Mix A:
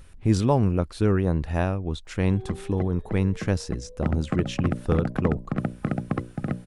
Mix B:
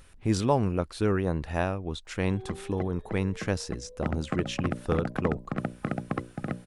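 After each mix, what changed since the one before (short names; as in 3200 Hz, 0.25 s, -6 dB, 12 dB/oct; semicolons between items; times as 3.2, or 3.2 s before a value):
master: add low shelf 290 Hz -7.5 dB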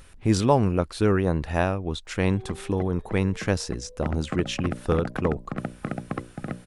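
speech +4.5 dB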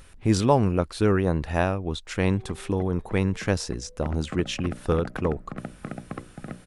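background -5.5 dB; reverb: on, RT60 1.3 s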